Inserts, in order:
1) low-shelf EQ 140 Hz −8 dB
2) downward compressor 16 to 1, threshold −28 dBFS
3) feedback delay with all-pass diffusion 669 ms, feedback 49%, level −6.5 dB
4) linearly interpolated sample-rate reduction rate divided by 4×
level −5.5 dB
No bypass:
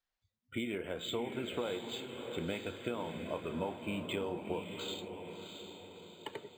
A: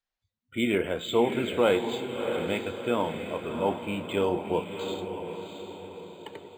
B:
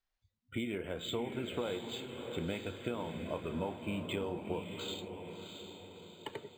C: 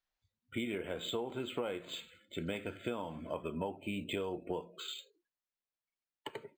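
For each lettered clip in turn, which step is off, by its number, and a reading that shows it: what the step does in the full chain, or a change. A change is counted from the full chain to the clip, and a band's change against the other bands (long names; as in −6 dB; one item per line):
2, average gain reduction 7.0 dB
1, 125 Hz band +3.5 dB
3, change in momentary loudness spread −2 LU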